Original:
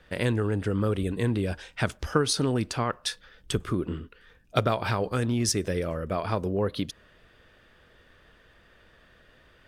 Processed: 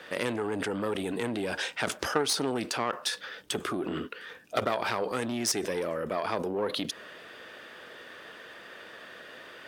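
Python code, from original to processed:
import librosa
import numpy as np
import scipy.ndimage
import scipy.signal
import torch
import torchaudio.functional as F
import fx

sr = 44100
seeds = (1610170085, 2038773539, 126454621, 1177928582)

p1 = fx.diode_clip(x, sr, knee_db=-23.5)
p2 = scipy.signal.sosfilt(scipy.signal.butter(2, 310.0, 'highpass', fs=sr, output='sos'), p1)
p3 = fx.over_compress(p2, sr, threshold_db=-44.0, ratio=-1.0)
y = p2 + (p3 * librosa.db_to_amplitude(1.5))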